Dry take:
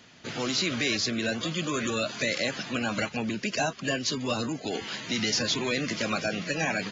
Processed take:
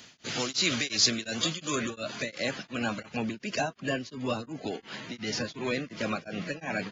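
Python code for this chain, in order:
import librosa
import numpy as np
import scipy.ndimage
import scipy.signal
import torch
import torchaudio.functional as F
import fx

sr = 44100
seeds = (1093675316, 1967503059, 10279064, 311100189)

y = fx.high_shelf(x, sr, hz=3300.0, db=fx.steps((0.0, 10.5), (1.74, -3.5), (3.6, -9.5)))
y = y * np.abs(np.cos(np.pi * 2.8 * np.arange(len(y)) / sr))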